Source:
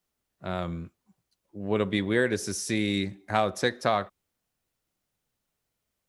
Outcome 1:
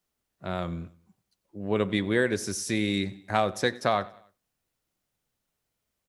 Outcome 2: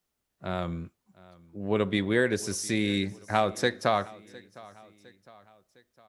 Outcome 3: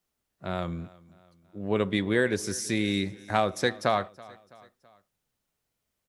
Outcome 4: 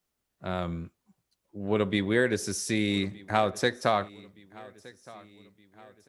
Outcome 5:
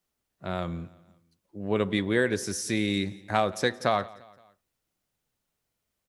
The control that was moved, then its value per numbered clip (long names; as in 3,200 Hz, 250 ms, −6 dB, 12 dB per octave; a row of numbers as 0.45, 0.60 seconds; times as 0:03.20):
repeating echo, delay time: 94, 708, 329, 1,218, 173 milliseconds